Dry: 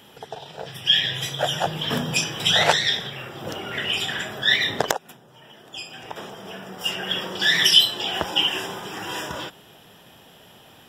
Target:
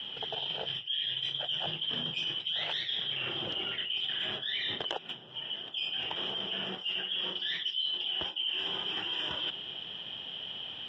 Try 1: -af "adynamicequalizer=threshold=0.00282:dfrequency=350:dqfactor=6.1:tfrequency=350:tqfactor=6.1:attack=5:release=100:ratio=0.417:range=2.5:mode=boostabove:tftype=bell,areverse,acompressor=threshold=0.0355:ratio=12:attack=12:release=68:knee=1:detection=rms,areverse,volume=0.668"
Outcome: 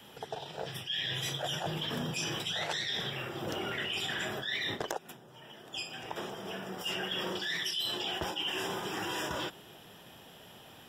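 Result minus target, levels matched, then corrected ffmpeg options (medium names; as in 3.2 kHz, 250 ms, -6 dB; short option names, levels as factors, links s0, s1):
4 kHz band -3.5 dB
-af "adynamicequalizer=threshold=0.00282:dfrequency=350:dqfactor=6.1:tfrequency=350:tqfactor=6.1:attack=5:release=100:ratio=0.417:range=2.5:mode=boostabove:tftype=bell,lowpass=f=3100:t=q:w=12,areverse,acompressor=threshold=0.0355:ratio=12:attack=12:release=68:knee=1:detection=rms,areverse,volume=0.668"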